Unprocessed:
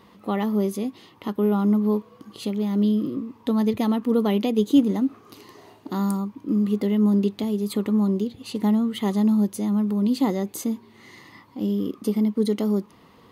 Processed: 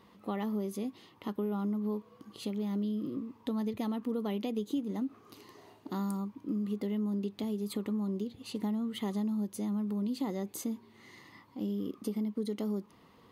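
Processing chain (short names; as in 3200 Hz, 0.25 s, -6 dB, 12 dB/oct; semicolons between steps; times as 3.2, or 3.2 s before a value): compressor 5:1, threshold -23 dBFS, peak gain reduction 10.5 dB; gain -7.5 dB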